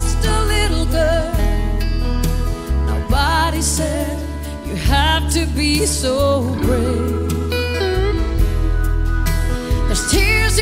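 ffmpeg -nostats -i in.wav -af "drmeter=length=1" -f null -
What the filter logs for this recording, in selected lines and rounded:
Channel 1: DR: 9.6
Overall DR: 9.6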